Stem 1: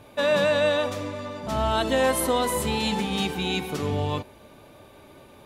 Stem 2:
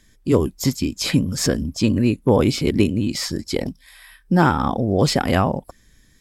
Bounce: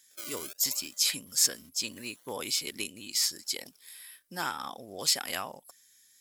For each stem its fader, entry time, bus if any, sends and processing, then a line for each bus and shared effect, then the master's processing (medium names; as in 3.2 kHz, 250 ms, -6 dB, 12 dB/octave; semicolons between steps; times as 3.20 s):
1.46 s -0.5 dB -> 1.83 s -9 dB, 0.00 s, no send, hum notches 60/120/180/240/300/360/420/480/540/600 Hz; decimation with a swept rate 34×, swing 100% 0.77 Hz; trance gate ".xxxx.xxxxx" 142 bpm -24 dB; auto duck -19 dB, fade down 1.00 s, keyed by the second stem
+1.5 dB, 0.00 s, no send, none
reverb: none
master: differentiator